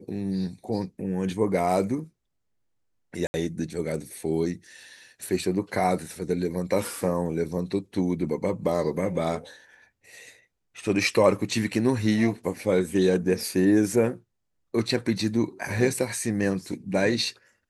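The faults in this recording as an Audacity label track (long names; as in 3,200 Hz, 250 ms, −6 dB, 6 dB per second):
3.270000	3.340000	drop-out 70 ms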